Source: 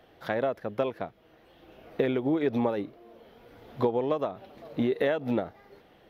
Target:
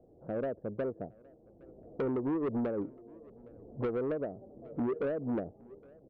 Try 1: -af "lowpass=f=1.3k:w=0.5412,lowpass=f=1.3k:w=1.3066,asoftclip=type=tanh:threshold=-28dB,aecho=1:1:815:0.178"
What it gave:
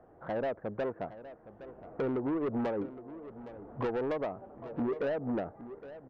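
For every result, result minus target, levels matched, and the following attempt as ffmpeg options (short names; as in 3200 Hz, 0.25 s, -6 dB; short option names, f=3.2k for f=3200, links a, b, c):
echo-to-direct +10 dB; 1000 Hz band +5.0 dB
-af "lowpass=f=1.3k:w=0.5412,lowpass=f=1.3k:w=1.3066,asoftclip=type=tanh:threshold=-28dB,aecho=1:1:815:0.0562"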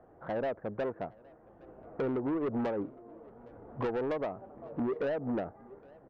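1000 Hz band +4.5 dB
-af "lowpass=f=560:w=0.5412,lowpass=f=560:w=1.3066,asoftclip=type=tanh:threshold=-28dB,aecho=1:1:815:0.0562"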